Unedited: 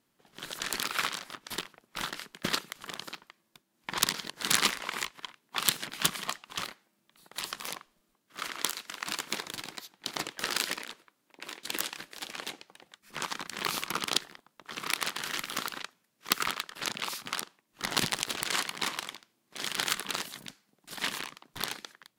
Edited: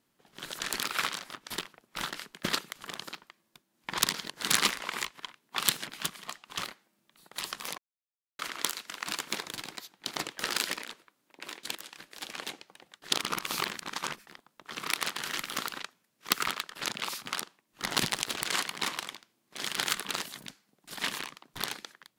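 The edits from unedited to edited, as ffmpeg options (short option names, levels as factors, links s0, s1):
-filter_complex "[0:a]asplit=8[s0][s1][s2][s3][s4][s5][s6][s7];[s0]atrim=end=6.12,asetpts=PTS-STARTPTS,afade=t=out:st=5.8:d=0.32:silence=0.334965[s8];[s1]atrim=start=6.12:end=6.22,asetpts=PTS-STARTPTS,volume=0.335[s9];[s2]atrim=start=6.22:end=7.78,asetpts=PTS-STARTPTS,afade=t=in:d=0.32:silence=0.334965,afade=t=out:st=1.556:d=0.004:c=hsin[s10];[s3]atrim=start=7.78:end=8.39,asetpts=PTS-STARTPTS,volume=0[s11];[s4]atrim=start=8.39:end=11.75,asetpts=PTS-STARTPTS,afade=t=in:d=0.004:c=hsin,afade=t=out:st=3.356:d=0.004:c=hsin:silence=0.11885[s12];[s5]atrim=start=11.75:end=13.022,asetpts=PTS-STARTPTS,afade=t=in:d=0.53:silence=0.11885[s13];[s6]atrim=start=13.018:end=14.272,asetpts=PTS-STARTPTS,areverse[s14];[s7]atrim=start=14.268[s15];[s8][s9][s10][s11][s12][s13]concat=n=6:v=0:a=1[s16];[s16][s14]acrossfade=d=0.004:c1=hsin:c2=hsin[s17];[s17][s15]acrossfade=d=0.004:c1=hsin:c2=hsin"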